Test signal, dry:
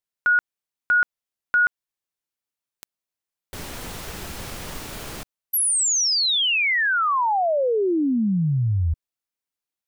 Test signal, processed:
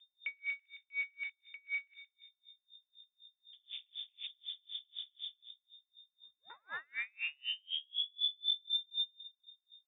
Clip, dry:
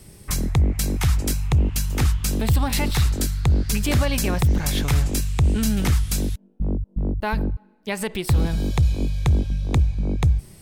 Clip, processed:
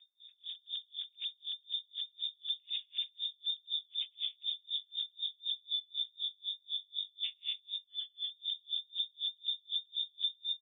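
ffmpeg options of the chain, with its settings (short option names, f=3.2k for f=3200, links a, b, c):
-filter_complex "[0:a]highpass=f=67:p=1,acrossover=split=150 2100:gain=0.1 1 0.224[a][b][c];[a][b][c]amix=inputs=3:normalize=0,asplit=2[d][e];[e]aecho=0:1:110.8|204.1|265.3:0.708|0.708|0.355[f];[d][f]amix=inputs=2:normalize=0,asubboost=boost=7:cutoff=180,acompressor=threshold=-29dB:ratio=2.5:attack=0.11:release=70:knee=1:detection=peak,aeval=exprs='val(0)+0.00398*(sin(2*PI*60*n/s)+sin(2*PI*2*60*n/s)/2+sin(2*PI*3*60*n/s)/3+sin(2*PI*4*60*n/s)/4+sin(2*PI*5*60*n/s)/5)':c=same,adynamicsmooth=sensitivity=2:basefreq=1.5k,afwtdn=0.0158,asplit=2[g][h];[h]adelay=172,lowpass=f=2.2k:p=1,volume=-15dB,asplit=2[i][j];[j]adelay=172,lowpass=f=2.2k:p=1,volume=0.39,asplit=2[k][l];[l]adelay=172,lowpass=f=2.2k:p=1,volume=0.39,asplit=2[m][n];[n]adelay=172,lowpass=f=2.2k:p=1,volume=0.39[o];[i][k][m][o]amix=inputs=4:normalize=0[p];[g][p]amix=inputs=2:normalize=0,lowpass=f=3.1k:t=q:w=0.5098,lowpass=f=3.1k:t=q:w=0.6013,lowpass=f=3.1k:t=q:w=0.9,lowpass=f=3.1k:t=q:w=2.563,afreqshift=-3700,aeval=exprs='val(0)*pow(10,-38*(0.5-0.5*cos(2*PI*4*n/s))/20)':c=same,volume=-4.5dB"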